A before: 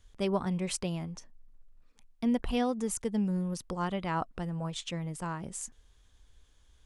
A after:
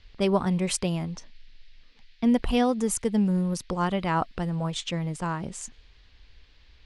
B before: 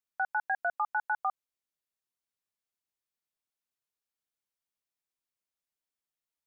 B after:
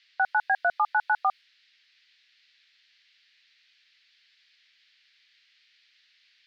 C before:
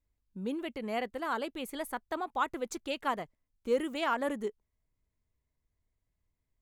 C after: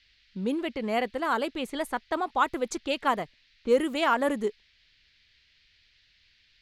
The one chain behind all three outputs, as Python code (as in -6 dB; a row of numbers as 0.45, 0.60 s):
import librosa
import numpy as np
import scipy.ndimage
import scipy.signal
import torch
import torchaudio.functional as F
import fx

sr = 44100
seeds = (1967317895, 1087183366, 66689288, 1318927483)

y = fx.env_lowpass(x, sr, base_hz=2400.0, full_db=-30.0)
y = fx.dmg_noise_band(y, sr, seeds[0], low_hz=1700.0, high_hz=4700.0, level_db=-71.0)
y = y * librosa.db_to_amplitude(6.5)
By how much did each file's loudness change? +6.5, +6.5, +6.5 LU